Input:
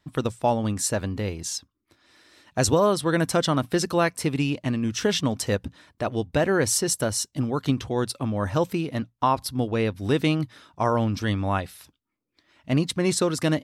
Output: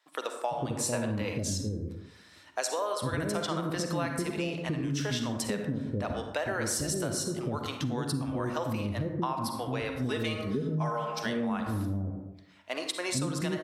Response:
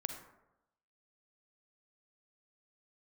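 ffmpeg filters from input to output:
-filter_complex "[0:a]asettb=1/sr,asplit=3[a][b][c];[a]atrim=end=9.994[d];[b]atrim=start=9.99:end=11.19,asetpts=PTS-STARTPTS,afade=t=in:d=0.004:c=qsin,afade=t=out:st=1.196:d=0.004:c=qsin,aecho=1:1:4.7:0.91,atrim=end_sample=52920[e];[c]atrim=start=11.186[f];[d][e]acrossfade=d=0.004:c1=hsin:c2=qsin[g];[g][f]acrossfade=d=0.004:c1=qsin:c2=hsin,acrossover=split=460[h][i];[h]adelay=450[j];[j][i]amix=inputs=2:normalize=0[k];[1:a]atrim=start_sample=2205[l];[k][l]afir=irnorm=-1:irlink=0,acompressor=threshold=-28dB:ratio=6,asettb=1/sr,asplit=3[m][n][o];[m]atrim=end=0.784[p];[n]atrim=start=0.78:end=1.38,asetpts=PTS-STARTPTS,afade=t=in:d=0.004:c=qsin,afade=t=out:st=0.596:d=0.004:c=qsin,equalizer=f=500:t=o:w=0.33:g=6,equalizer=f=1k:t=o:w=0.33:g=7,equalizer=f=2.5k:t=o:w=0.33:g=7[q];[o]atrim=start=1.376[r];[p][q]acrossfade=d=0.004:c1=hsin:c2=qsin[s];[s][r]acrossfade=d=0.004:c1=qsin:c2=hsin"

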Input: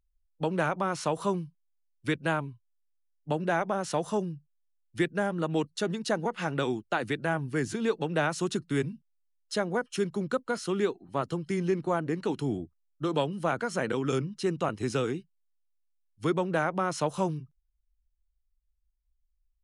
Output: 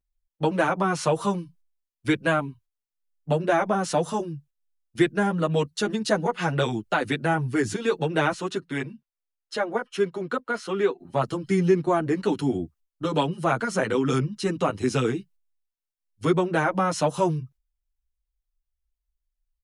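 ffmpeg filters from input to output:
-filter_complex "[0:a]asettb=1/sr,asplit=3[a][b][c];[a]atrim=end=8.324[d];[b]atrim=start=8.32:end=11,asetpts=PTS-STARTPTS,afade=t=in:d=0.004:c=qsin,afade=t=out:st=2.676:d=0.004:c=qsin,bass=f=250:g=-12,treble=f=4k:g=-10[e];[c]atrim=start=10.996[f];[d][e]acrossfade=d=0.004:c1=hsin:c2=qsin[g];[g][f]acrossfade=d=0.004:c1=qsin:c2=hsin,agate=range=-9dB:threshold=-55dB:ratio=16:detection=peak,asplit=2[h][i];[i]adelay=7.5,afreqshift=-1.3[j];[h][j]amix=inputs=2:normalize=1,volume=8.5dB"

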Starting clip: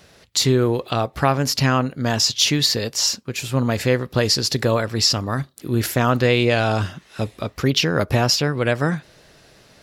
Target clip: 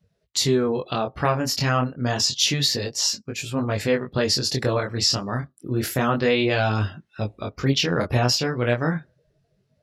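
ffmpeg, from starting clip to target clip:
-af "afftdn=nr=26:nf=-40,flanger=delay=19:depth=5.8:speed=0.29"

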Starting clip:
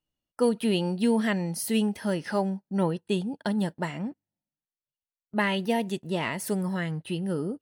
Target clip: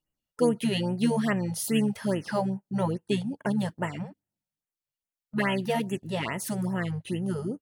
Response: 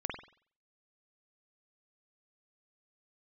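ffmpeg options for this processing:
-filter_complex "[0:a]asplit=2[a][b];[b]asetrate=29433,aresample=44100,atempo=1.49831,volume=-11dB[c];[a][c]amix=inputs=2:normalize=0,afftfilt=real='re*(1-between(b*sr/1024,270*pow(4800/270,0.5+0.5*sin(2*PI*2.4*pts/sr))/1.41,270*pow(4800/270,0.5+0.5*sin(2*PI*2.4*pts/sr))*1.41))':imag='im*(1-between(b*sr/1024,270*pow(4800/270,0.5+0.5*sin(2*PI*2.4*pts/sr))/1.41,270*pow(4800/270,0.5+0.5*sin(2*PI*2.4*pts/sr))*1.41))':win_size=1024:overlap=0.75"

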